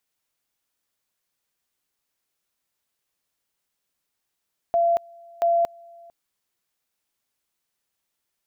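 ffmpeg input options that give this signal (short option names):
-f lavfi -i "aevalsrc='pow(10,(-16.5-27*gte(mod(t,0.68),0.23))/20)*sin(2*PI*682*t)':d=1.36:s=44100"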